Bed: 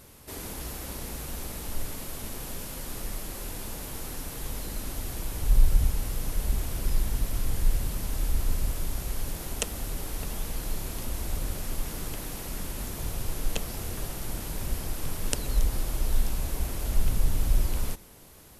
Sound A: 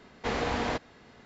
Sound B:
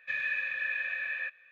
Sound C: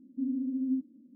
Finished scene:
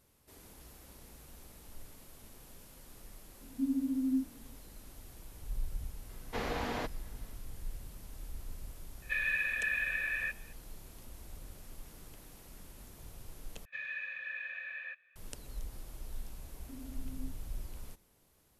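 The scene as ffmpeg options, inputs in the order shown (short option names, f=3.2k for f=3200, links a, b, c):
-filter_complex "[3:a]asplit=2[a][b];[2:a]asplit=2[c][d];[0:a]volume=-17.5dB[e];[a]asplit=2[f][g];[g]adelay=22,volume=-3.5dB[h];[f][h]amix=inputs=2:normalize=0[i];[1:a]highpass=43[j];[e]asplit=2[k][l];[k]atrim=end=13.654[m];[d]atrim=end=1.51,asetpts=PTS-STARTPTS,volume=-8.5dB[n];[l]atrim=start=15.156[o];[i]atrim=end=1.15,asetpts=PTS-STARTPTS,volume=-2.5dB,afade=t=in:d=0.004:c=hsin,afade=t=out:st=1.146:d=0.004:c=hsin,adelay=150381S[p];[j]atrim=end=1.25,asetpts=PTS-STARTPTS,volume=-6.5dB,afade=t=in:d=0.004:c=hsin,afade=t=out:st=1.246:d=0.004:c=hsin,adelay=6090[q];[c]atrim=end=1.51,asetpts=PTS-STARTPTS,volume=-0.5dB,afade=t=in:d=0.004:c=hsin,afade=t=out:st=1.506:d=0.004:c=hsin,adelay=9020[r];[b]atrim=end=1.15,asetpts=PTS-STARTPTS,volume=-17.5dB,afade=t=in:d=0.004:c=hsin,afade=t=out:st=1.146:d=0.004:c=hsin,adelay=16510[s];[m][n]acrossfade=d=0.004:c1=hsin:c2=hsin[t];[t][o]acrossfade=d=0.004:c1=hsin:c2=hsin[u];[u][p][q][r][s]amix=inputs=5:normalize=0"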